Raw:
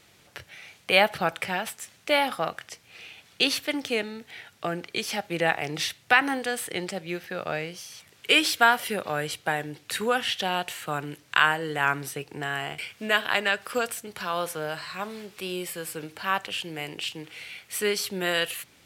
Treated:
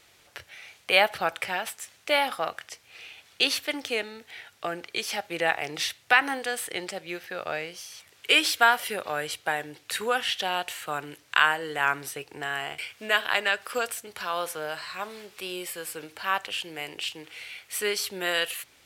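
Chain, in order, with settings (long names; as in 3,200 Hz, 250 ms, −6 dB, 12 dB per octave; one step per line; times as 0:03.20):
parametric band 170 Hz −10 dB 1.7 octaves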